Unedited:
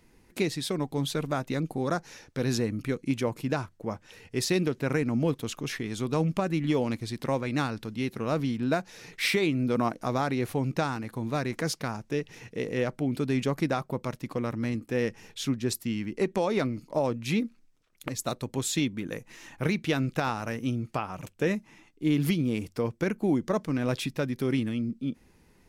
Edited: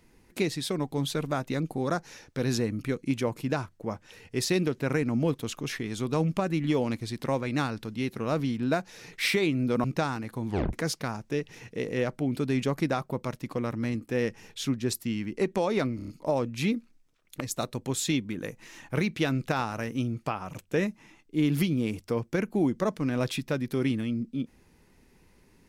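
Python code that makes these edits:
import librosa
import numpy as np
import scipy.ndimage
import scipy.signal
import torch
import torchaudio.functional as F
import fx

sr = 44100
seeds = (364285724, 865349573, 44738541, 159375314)

y = fx.edit(x, sr, fx.cut(start_s=9.84, length_s=0.8),
    fx.tape_stop(start_s=11.27, length_s=0.26),
    fx.stutter(start_s=16.76, slice_s=0.03, count=5), tone=tone)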